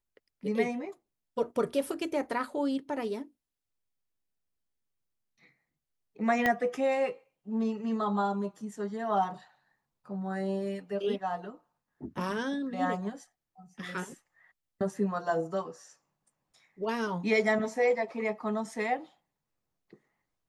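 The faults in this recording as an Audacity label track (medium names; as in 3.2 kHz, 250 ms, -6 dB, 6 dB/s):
6.460000	6.460000	pop -14 dBFS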